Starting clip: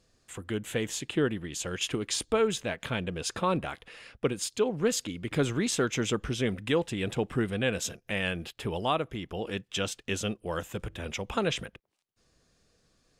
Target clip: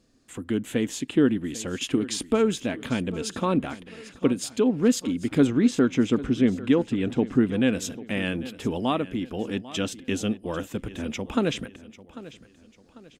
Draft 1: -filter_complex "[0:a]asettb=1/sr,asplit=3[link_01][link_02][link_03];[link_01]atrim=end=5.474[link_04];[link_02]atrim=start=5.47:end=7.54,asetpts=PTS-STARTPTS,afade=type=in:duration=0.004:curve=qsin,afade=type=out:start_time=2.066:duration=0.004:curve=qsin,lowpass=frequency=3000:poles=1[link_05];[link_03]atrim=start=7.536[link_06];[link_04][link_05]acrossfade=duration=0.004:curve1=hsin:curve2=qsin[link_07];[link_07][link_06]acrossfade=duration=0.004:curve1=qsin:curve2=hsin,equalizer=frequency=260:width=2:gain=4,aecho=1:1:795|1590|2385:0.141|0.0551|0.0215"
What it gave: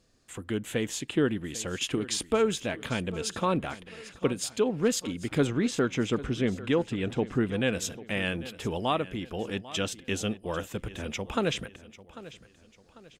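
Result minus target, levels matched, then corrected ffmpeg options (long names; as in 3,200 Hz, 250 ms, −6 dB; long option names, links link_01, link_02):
250 Hz band −3.0 dB
-filter_complex "[0:a]asettb=1/sr,asplit=3[link_01][link_02][link_03];[link_01]atrim=end=5.474[link_04];[link_02]atrim=start=5.47:end=7.54,asetpts=PTS-STARTPTS,afade=type=in:duration=0.004:curve=qsin,afade=type=out:start_time=2.066:duration=0.004:curve=qsin,lowpass=frequency=3000:poles=1[link_05];[link_03]atrim=start=7.536[link_06];[link_04][link_05]acrossfade=duration=0.004:curve1=hsin:curve2=qsin[link_07];[link_07][link_06]acrossfade=duration=0.004:curve1=qsin:curve2=hsin,equalizer=frequency=260:width=2:gain=14,aecho=1:1:795|1590|2385:0.141|0.0551|0.0215"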